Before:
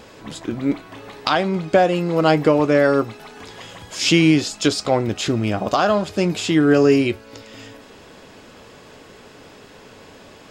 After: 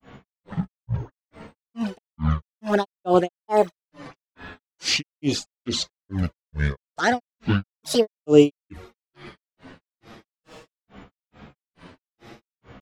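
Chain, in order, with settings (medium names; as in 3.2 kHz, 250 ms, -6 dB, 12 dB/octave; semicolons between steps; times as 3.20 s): touch-sensitive flanger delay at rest 7.3 ms, full sweep at -11.5 dBFS; tape speed -18%; resampled via 32 kHz; granulator 250 ms, grains 2.3 per s, pitch spread up and down by 12 st; trim +3.5 dB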